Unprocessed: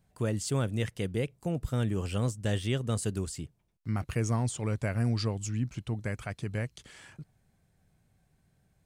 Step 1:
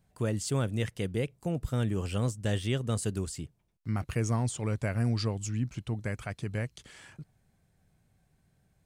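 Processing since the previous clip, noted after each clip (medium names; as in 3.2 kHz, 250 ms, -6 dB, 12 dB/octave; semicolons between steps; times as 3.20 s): no audible change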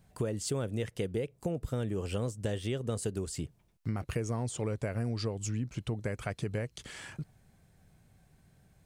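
dynamic bell 460 Hz, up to +7 dB, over -47 dBFS, Q 1.4; compression 6:1, threshold -37 dBFS, peak gain reduction 14.5 dB; trim +6 dB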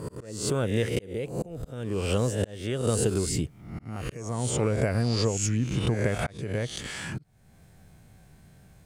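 reverse spectral sustain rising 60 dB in 0.66 s; slow attack 445 ms; trim +7 dB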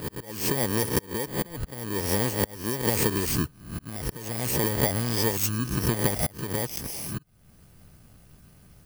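bit-reversed sample order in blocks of 32 samples; harmonic-percussive split harmonic -9 dB; trim +5.5 dB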